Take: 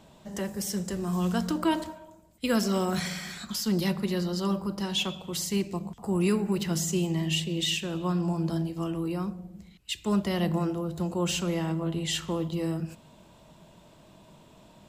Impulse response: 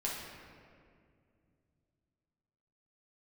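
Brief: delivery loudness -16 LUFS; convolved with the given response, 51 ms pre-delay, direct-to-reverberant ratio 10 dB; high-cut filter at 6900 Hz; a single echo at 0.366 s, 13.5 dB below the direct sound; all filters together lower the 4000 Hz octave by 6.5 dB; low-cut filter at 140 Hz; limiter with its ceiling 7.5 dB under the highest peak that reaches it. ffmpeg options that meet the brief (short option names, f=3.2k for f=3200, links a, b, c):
-filter_complex "[0:a]highpass=140,lowpass=6.9k,equalizer=f=4k:t=o:g=-9,alimiter=limit=-23dB:level=0:latency=1,aecho=1:1:366:0.211,asplit=2[a][b];[1:a]atrim=start_sample=2205,adelay=51[c];[b][c]afir=irnorm=-1:irlink=0,volume=-13.5dB[d];[a][d]amix=inputs=2:normalize=0,volume=16dB"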